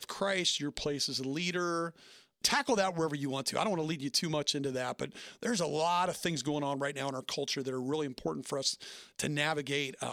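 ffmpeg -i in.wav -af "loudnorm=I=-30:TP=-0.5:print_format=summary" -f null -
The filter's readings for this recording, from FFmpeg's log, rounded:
Input Integrated:    -33.2 LUFS
Input True Peak:     -11.7 dBTP
Input LRA:             2.4 LU
Input Threshold:     -43.4 LUFS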